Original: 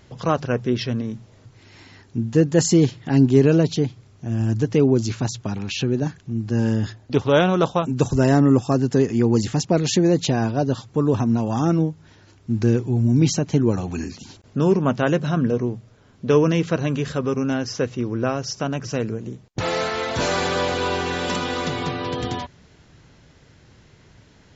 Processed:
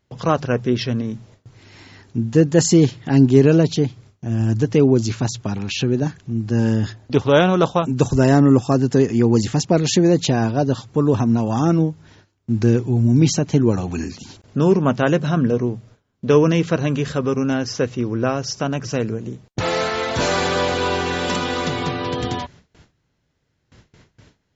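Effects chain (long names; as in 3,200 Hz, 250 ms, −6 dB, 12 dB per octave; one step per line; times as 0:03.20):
noise gate with hold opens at −40 dBFS
level +2.5 dB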